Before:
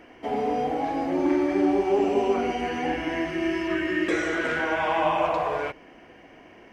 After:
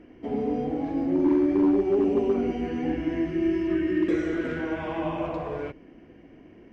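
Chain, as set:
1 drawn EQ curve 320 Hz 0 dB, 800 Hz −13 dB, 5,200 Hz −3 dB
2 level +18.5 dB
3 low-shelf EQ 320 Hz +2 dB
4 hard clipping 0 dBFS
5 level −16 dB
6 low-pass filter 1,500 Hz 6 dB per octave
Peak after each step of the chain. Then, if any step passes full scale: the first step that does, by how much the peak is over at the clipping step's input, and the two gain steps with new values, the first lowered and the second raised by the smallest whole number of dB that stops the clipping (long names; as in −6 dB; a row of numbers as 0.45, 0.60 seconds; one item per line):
−13.5, +5.0, +6.0, 0.0, −16.0, −16.0 dBFS
step 2, 6.0 dB
step 2 +12.5 dB, step 5 −10 dB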